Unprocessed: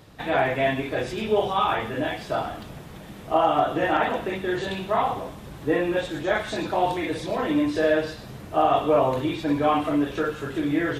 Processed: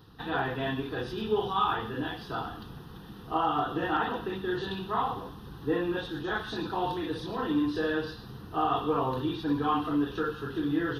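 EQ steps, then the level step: bell 510 Hz +8.5 dB 0.9 oct; fixed phaser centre 2200 Hz, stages 6; -3.5 dB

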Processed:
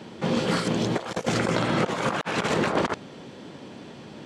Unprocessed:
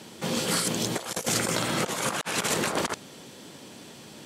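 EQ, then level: tape spacing loss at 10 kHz 23 dB; +6.0 dB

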